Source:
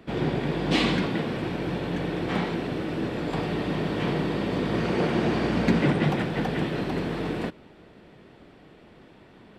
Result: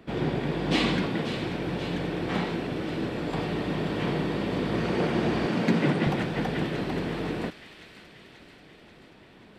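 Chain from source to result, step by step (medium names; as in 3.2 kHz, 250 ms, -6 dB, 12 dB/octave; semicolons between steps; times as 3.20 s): 5.46–6.07 s: high-pass 120 Hz 24 dB/octave; feedback echo behind a high-pass 535 ms, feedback 63%, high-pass 2.1 kHz, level -9 dB; trim -1.5 dB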